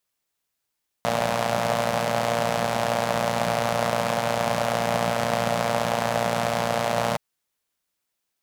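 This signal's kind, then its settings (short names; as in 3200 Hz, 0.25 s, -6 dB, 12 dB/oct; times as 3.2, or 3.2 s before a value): four-cylinder engine model, steady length 6.12 s, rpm 3500, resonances 180/610 Hz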